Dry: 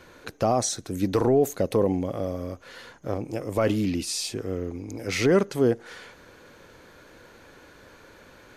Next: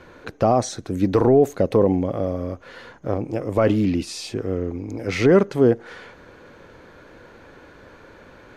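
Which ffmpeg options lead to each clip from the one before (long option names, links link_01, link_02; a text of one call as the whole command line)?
ffmpeg -i in.wav -af "lowpass=frequency=2000:poles=1,volume=5.5dB" out.wav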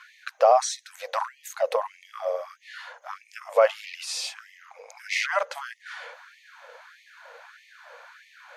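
ffmpeg -i in.wav -af "afftfilt=real='re*gte(b*sr/1024,440*pow(1800/440,0.5+0.5*sin(2*PI*1.6*pts/sr)))':imag='im*gte(b*sr/1024,440*pow(1800/440,0.5+0.5*sin(2*PI*1.6*pts/sr)))':win_size=1024:overlap=0.75,volume=2dB" out.wav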